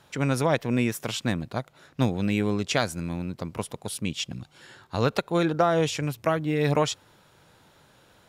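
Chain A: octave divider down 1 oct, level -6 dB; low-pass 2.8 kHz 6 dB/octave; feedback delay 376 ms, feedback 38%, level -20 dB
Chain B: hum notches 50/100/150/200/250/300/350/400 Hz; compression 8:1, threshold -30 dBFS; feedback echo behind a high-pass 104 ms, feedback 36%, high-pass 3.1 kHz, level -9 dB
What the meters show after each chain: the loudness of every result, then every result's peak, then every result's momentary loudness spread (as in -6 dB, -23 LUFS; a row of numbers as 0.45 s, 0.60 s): -27.0 LUFS, -35.5 LUFS; -8.5 dBFS, -17.5 dBFS; 13 LU, 7 LU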